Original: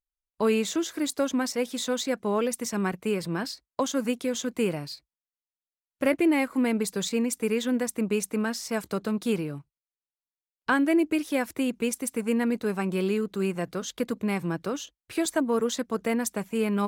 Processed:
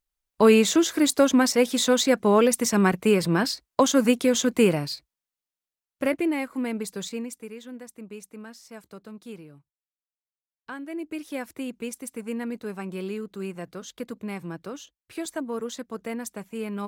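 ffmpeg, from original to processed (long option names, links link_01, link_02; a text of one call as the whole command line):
ffmpeg -i in.wav -af "volume=15.5dB,afade=type=out:start_time=4.54:duration=1.83:silence=0.266073,afade=type=out:start_time=7.02:duration=0.48:silence=0.316228,afade=type=in:start_time=10.87:duration=0.42:silence=0.398107" out.wav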